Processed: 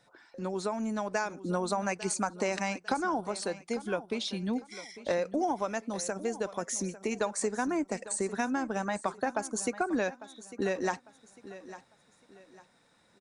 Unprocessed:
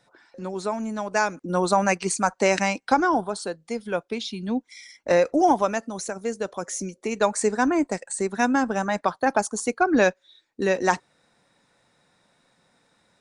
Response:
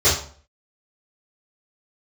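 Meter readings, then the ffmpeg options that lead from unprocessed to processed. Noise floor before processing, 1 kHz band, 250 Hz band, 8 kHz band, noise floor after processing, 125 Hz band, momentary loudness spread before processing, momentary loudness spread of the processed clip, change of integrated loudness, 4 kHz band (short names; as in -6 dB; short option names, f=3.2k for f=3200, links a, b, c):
-69 dBFS, -10.0 dB, -7.5 dB, -5.0 dB, -66 dBFS, -6.5 dB, 11 LU, 10 LU, -8.5 dB, -5.5 dB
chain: -filter_complex "[0:a]acompressor=threshold=-26dB:ratio=4,asplit=2[a][b];[b]aecho=0:1:850|1700|2550:0.168|0.0554|0.0183[c];[a][c]amix=inputs=2:normalize=0,volume=-2dB"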